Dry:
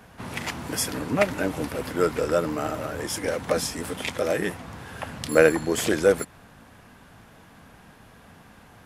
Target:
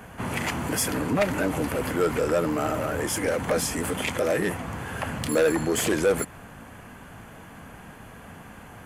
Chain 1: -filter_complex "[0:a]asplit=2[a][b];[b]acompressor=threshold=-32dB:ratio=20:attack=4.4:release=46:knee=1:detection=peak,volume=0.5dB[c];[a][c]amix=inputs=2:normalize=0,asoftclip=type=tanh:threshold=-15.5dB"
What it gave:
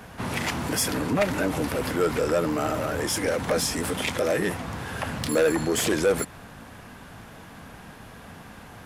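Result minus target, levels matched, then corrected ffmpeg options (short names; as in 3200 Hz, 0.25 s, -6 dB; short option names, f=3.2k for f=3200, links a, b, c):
4000 Hz band +3.0 dB
-filter_complex "[0:a]asplit=2[a][b];[b]acompressor=threshold=-32dB:ratio=20:attack=4.4:release=46:knee=1:detection=peak,asuperstop=centerf=4500:order=8:qfactor=3,volume=0.5dB[c];[a][c]amix=inputs=2:normalize=0,asoftclip=type=tanh:threshold=-15.5dB"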